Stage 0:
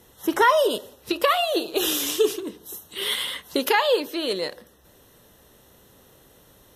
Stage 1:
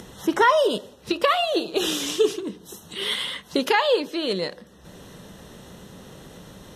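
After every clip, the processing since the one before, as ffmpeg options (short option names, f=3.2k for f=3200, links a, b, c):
-af "lowpass=7.8k,equalizer=f=180:t=o:w=0.62:g=10,acompressor=mode=upward:threshold=-33dB:ratio=2.5"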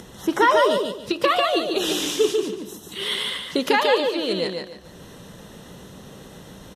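-af "aecho=1:1:145|290|435|580:0.631|0.177|0.0495|0.0139"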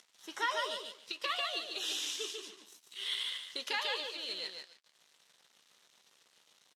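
-filter_complex "[0:a]aeval=exprs='sgn(val(0))*max(abs(val(0))-0.00891,0)':c=same,bandpass=f=4.5k:t=q:w=0.68:csg=0,asplit=2[a][b];[b]adelay=13,volume=-11dB[c];[a][c]amix=inputs=2:normalize=0,volume=-8dB"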